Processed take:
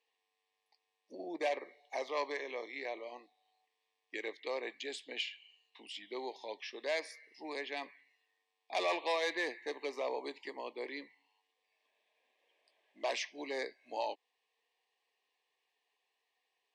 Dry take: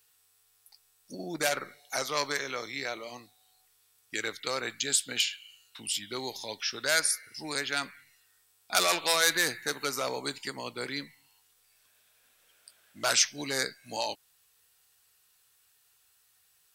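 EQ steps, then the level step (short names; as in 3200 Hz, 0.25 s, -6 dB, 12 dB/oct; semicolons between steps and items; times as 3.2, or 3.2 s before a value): HPF 320 Hz 24 dB/oct; Butterworth band-stop 1400 Hz, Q 1.9; LPF 2100 Hz 12 dB/oct; -2.5 dB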